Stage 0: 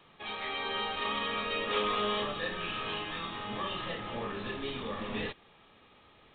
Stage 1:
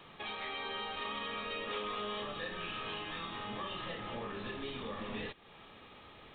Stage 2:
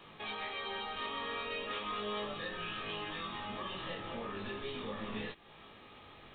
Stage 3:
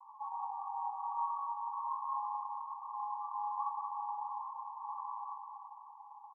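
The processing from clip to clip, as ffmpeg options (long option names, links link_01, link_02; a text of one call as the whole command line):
ffmpeg -i in.wav -af "acompressor=threshold=-48dB:ratio=2.5,volume=5dB" out.wav
ffmpeg -i in.wav -af "flanger=delay=18.5:depth=2.9:speed=0.38,volume=3dB" out.wav
ffmpeg -i in.wav -filter_complex "[0:a]asuperpass=centerf=950:order=20:qfactor=2.8,asplit=2[link_01][link_02];[link_02]aecho=0:1:180|342|487.8|619|737.1:0.631|0.398|0.251|0.158|0.1[link_03];[link_01][link_03]amix=inputs=2:normalize=0,volume=9dB" out.wav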